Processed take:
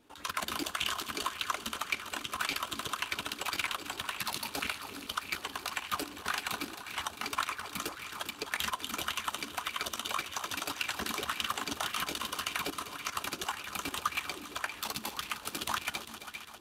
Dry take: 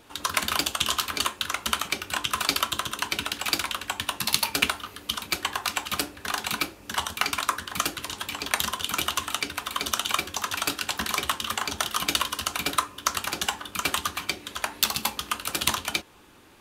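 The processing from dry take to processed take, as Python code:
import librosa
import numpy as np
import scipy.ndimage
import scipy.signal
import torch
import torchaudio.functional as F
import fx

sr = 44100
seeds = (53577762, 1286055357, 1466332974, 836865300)

y = fx.level_steps(x, sr, step_db=16)
y = fx.echo_heads(y, sr, ms=133, heads='second and third', feedback_pct=64, wet_db=-12.0)
y = fx.bell_lfo(y, sr, hz=1.8, low_hz=240.0, high_hz=2500.0, db=10)
y = F.gain(torch.from_numpy(y), -4.5).numpy()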